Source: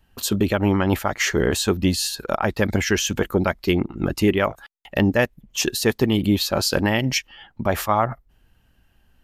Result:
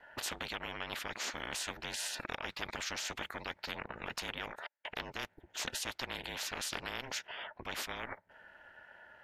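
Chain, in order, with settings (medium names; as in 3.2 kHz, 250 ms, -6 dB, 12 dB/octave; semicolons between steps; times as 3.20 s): two resonant band-passes 1.1 kHz, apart 1.1 oct; ring modulator 140 Hz; spectrum-flattening compressor 10:1; trim -4.5 dB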